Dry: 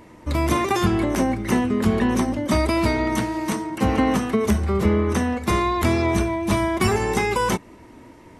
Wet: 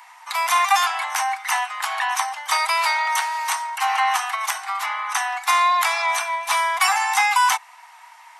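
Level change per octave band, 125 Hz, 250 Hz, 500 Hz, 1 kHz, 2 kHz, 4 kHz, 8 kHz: under -40 dB, under -40 dB, -13.5 dB, +6.5 dB, +7.0 dB, +7.0 dB, +7.0 dB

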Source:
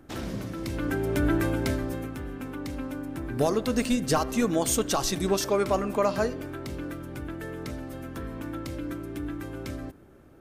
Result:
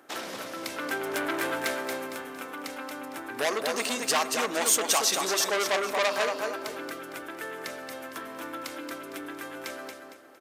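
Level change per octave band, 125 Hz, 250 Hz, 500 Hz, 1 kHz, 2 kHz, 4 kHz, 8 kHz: -21.0 dB, -9.5 dB, -2.5 dB, +2.0 dB, +6.0 dB, +6.0 dB, +5.5 dB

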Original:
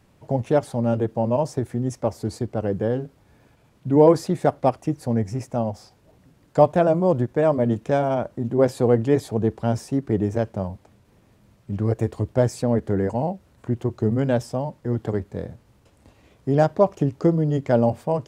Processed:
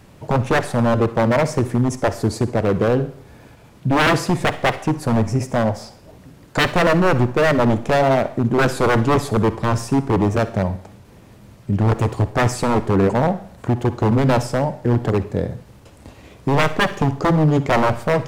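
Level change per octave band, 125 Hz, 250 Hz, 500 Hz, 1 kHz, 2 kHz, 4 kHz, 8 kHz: +5.0 dB, +3.5 dB, +1.5 dB, +6.5 dB, +15.5 dB, +15.0 dB, +9.0 dB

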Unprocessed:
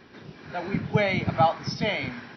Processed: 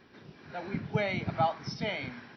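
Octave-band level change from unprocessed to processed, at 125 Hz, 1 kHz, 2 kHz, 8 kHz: -7.0 dB, -7.0 dB, -7.0 dB, no reading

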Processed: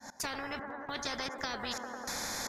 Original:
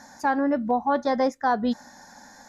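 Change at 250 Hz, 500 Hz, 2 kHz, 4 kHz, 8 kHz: -18.5 dB, -16.5 dB, -5.5 dB, +5.0 dB, no reading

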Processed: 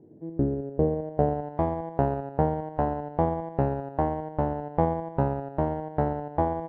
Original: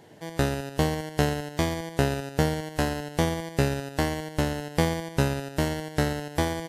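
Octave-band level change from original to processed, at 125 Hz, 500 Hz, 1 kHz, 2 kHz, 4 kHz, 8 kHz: -2.0 dB, +1.5 dB, +3.5 dB, -14.0 dB, under -25 dB, under -40 dB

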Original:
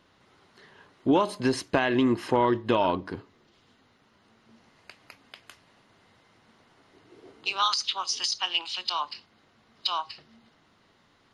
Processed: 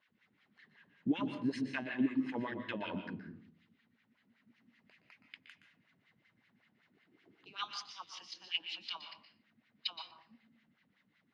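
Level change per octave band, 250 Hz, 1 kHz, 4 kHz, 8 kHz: -8.5 dB, -19.0 dB, -13.0 dB, -21.5 dB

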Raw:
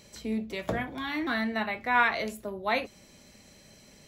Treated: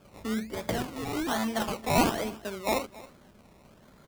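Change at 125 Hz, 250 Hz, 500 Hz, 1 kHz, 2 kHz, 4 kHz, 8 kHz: +5.5 dB, +2.0 dB, +2.5 dB, -1.5 dB, -7.5 dB, +2.0 dB, +12.0 dB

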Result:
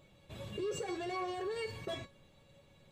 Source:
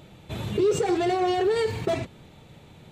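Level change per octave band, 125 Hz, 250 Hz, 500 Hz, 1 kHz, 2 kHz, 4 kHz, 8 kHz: -15.5 dB, -16.0 dB, -15.5 dB, -14.0 dB, -10.0 dB, -10.5 dB, -11.5 dB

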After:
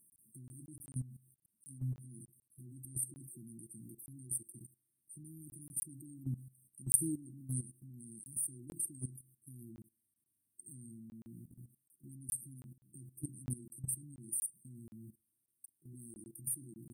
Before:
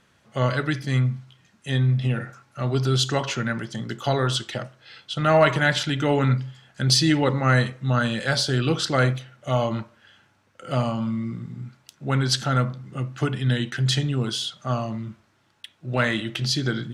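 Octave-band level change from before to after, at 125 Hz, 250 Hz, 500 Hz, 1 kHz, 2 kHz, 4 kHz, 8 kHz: -23.0 dB, -22.0 dB, -35.5 dB, under -40 dB, under -40 dB, under -40 dB, -4.0 dB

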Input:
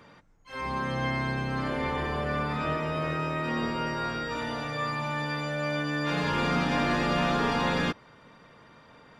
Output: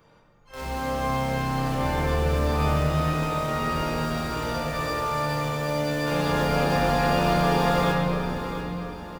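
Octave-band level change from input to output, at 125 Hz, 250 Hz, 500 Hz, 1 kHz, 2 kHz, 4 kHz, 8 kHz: +6.5 dB, +3.0 dB, +6.0 dB, +4.5 dB, +0.5 dB, +2.5 dB, +9.0 dB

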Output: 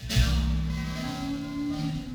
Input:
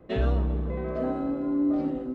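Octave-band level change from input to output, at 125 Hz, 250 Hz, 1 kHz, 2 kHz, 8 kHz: +3.0 dB, -4.0 dB, -2.5 dB, +6.5 dB, no reading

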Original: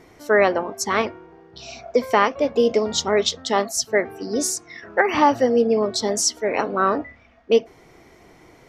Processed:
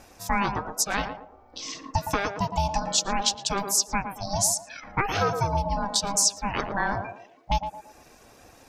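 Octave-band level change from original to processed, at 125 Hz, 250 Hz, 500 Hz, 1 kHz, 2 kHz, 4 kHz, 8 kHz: +7.0 dB, -8.5 dB, -14.0 dB, -4.0 dB, -6.0 dB, -1.5 dB, +1.0 dB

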